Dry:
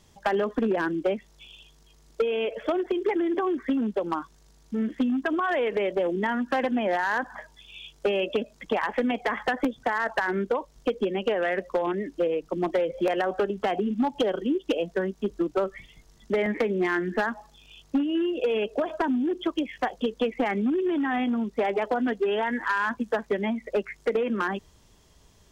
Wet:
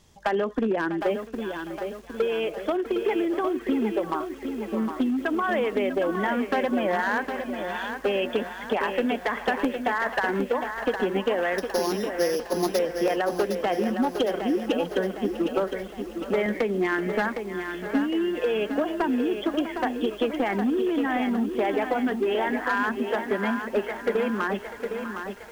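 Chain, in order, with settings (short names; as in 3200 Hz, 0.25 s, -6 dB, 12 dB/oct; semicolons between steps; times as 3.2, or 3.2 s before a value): 11.58–12.79 sample sorter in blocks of 8 samples; narrowing echo 0.648 s, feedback 51%, band-pass 1500 Hz, level -11.5 dB; lo-fi delay 0.76 s, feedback 55%, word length 8-bit, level -7 dB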